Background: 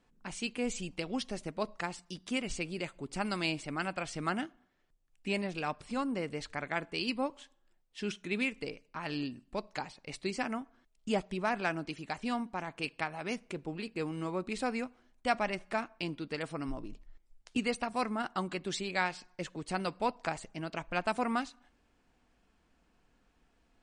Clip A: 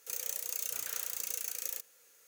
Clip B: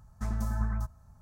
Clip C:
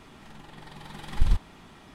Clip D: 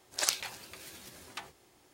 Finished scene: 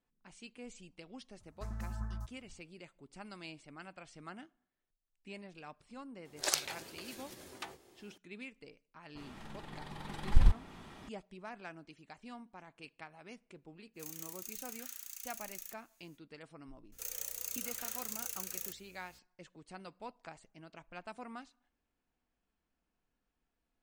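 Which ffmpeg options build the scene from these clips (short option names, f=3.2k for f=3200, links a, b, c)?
-filter_complex "[1:a]asplit=2[a][b];[0:a]volume=-15dB[c];[4:a]equalizer=f=380:w=0.81:g=6.5[d];[3:a]adynamicequalizer=threshold=0.002:dfrequency=1900:dqfactor=0.7:tfrequency=1900:tqfactor=0.7:attack=5:release=100:ratio=0.375:range=2.5:mode=cutabove:tftype=highshelf[e];[a]highpass=1.4k[f];[b]aeval=exprs='val(0)+0.000631*(sin(2*PI*60*n/s)+sin(2*PI*2*60*n/s)/2+sin(2*PI*3*60*n/s)/3+sin(2*PI*4*60*n/s)/4+sin(2*PI*5*60*n/s)/5)':c=same[g];[2:a]atrim=end=1.21,asetpts=PTS-STARTPTS,volume=-10dB,afade=t=in:d=0.004:c=hsin,afade=t=out:st=1.206:d=0.004:c=hsin,adelay=1400[h];[d]atrim=end=1.93,asetpts=PTS-STARTPTS,volume=-3dB,afade=t=in:d=0.004:c=hsin,afade=t=out:st=1.926:d=0.004:c=hsin,adelay=6250[i];[e]atrim=end=1.94,asetpts=PTS-STARTPTS,volume=-1.5dB,afade=t=in:d=0.004:c=hsin,afade=t=out:st=1.936:d=0.004:c=hsin,adelay=9150[j];[f]atrim=end=2.27,asetpts=PTS-STARTPTS,volume=-9.5dB,afade=t=in:d=0.05,afade=t=out:st=2.22:d=0.05,adelay=13930[k];[g]atrim=end=2.27,asetpts=PTS-STARTPTS,volume=-4dB,afade=t=in:d=0.004:c=hsin,afade=t=out:st=2.266:d=0.004:c=hsin,adelay=16920[l];[c][h][i][j][k][l]amix=inputs=6:normalize=0"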